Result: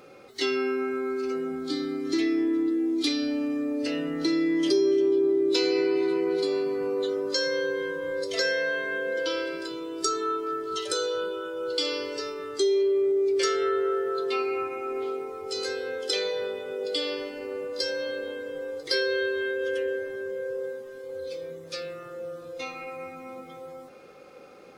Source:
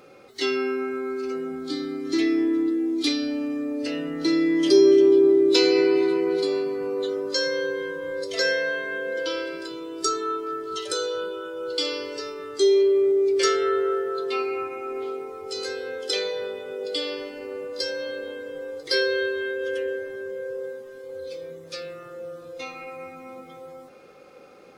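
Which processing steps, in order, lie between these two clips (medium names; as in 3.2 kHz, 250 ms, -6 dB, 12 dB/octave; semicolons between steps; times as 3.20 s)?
compression 2.5:1, threshold -23 dBFS, peak gain reduction 8 dB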